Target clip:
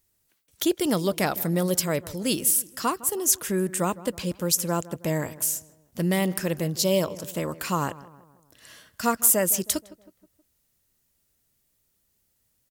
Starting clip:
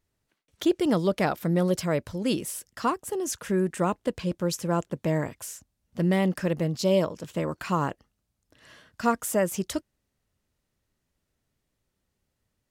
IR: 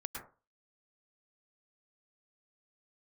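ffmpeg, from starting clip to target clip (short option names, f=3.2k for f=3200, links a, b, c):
-filter_complex "[0:a]aemphasis=mode=production:type=75fm,asplit=2[a][b];[b]adelay=159,lowpass=f=1.8k:p=1,volume=-17.5dB,asplit=2[c][d];[d]adelay=159,lowpass=f=1.8k:p=1,volume=0.51,asplit=2[e][f];[f]adelay=159,lowpass=f=1.8k:p=1,volume=0.51,asplit=2[g][h];[h]adelay=159,lowpass=f=1.8k:p=1,volume=0.51[i];[a][c][e][g][i]amix=inputs=5:normalize=0"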